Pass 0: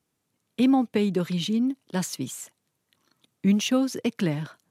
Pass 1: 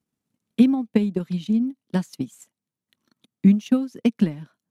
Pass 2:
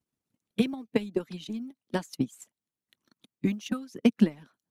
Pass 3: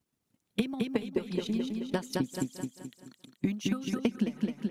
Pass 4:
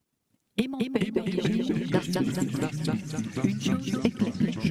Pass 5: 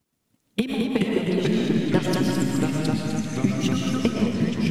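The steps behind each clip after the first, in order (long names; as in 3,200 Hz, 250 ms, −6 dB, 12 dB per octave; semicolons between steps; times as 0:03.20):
low-shelf EQ 110 Hz +5.5 dB; transient designer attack +10 dB, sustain −8 dB; parametric band 220 Hz +9 dB 0.72 octaves; level −8.5 dB
floating-point word with a short mantissa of 8 bits; harmonic and percussive parts rebalanced harmonic −15 dB
repeating echo 214 ms, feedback 43%, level −6 dB; downward compressor 6 to 1, threshold −31 dBFS, peak gain reduction 15.5 dB; single-tap delay 396 ms −21.5 dB; level +5 dB
delay with pitch and tempo change per echo 312 ms, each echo −3 semitones, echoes 3; level +3 dB
comb and all-pass reverb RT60 1 s, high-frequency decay 0.85×, pre-delay 80 ms, DRR 0.5 dB; level +2.5 dB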